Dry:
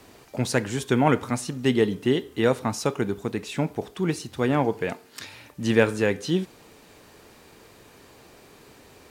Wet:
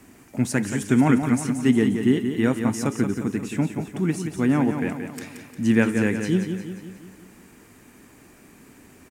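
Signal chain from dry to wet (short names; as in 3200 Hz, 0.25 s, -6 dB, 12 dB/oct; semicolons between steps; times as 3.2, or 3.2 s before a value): graphic EQ 250/500/1000/2000/4000/8000 Hz +8/-8/-3/+3/-11/+4 dB; on a send: feedback echo 0.177 s, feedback 52%, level -7.5 dB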